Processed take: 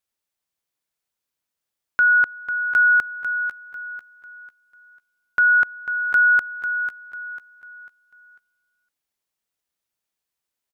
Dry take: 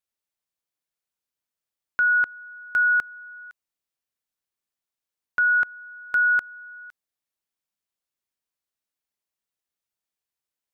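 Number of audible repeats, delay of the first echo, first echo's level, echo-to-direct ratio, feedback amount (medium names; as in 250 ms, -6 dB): 3, 496 ms, -10.0 dB, -9.5 dB, 36%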